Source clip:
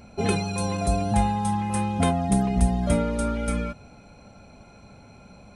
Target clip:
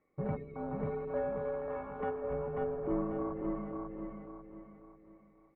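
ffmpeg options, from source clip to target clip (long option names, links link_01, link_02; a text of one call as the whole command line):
ffmpeg -i in.wav -filter_complex "[0:a]afwtdn=0.0447,asettb=1/sr,asplit=3[link_01][link_02][link_03];[link_01]atrim=end=0.834[link_04];[link_02]atrim=start=0.83:end=2.24,asetpts=PTS-STARTPTS,afade=type=in:duration=0.004:curve=qsin,afade=type=out:start_time=1.406:duration=0.004:curve=qsin,tiltshelf=frequency=1200:gain=-7[link_05];[link_03]atrim=start=2.236[link_06];[link_04][link_05]acrossfade=duration=0.004:curve1=hsin:curve2=qsin[link_07];[link_07][link_06]acrossfade=duration=0.004:curve1=qsin:curve2=hsin,aecho=1:1:542|1084|1626|2168|2710:0.708|0.283|0.113|0.0453|0.0181,highpass=frequency=380:width_type=q:width=0.5412,highpass=frequency=380:width_type=q:width=1.307,lowpass=frequency=2500:width_type=q:width=0.5176,lowpass=frequency=2500:width_type=q:width=0.7071,lowpass=frequency=2500:width_type=q:width=1.932,afreqshift=-260,volume=-6dB" out.wav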